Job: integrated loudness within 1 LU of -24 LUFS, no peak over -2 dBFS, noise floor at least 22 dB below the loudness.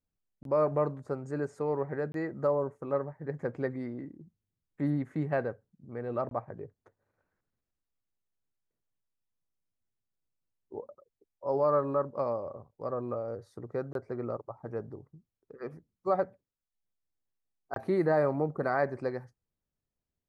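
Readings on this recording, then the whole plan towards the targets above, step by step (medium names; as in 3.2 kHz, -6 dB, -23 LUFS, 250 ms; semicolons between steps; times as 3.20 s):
dropouts 5; longest dropout 22 ms; loudness -32.5 LUFS; peak level -15.5 dBFS; loudness target -24.0 LUFS
-> interpolate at 0.43/2.12/6.29/13.93/17.74 s, 22 ms; trim +8.5 dB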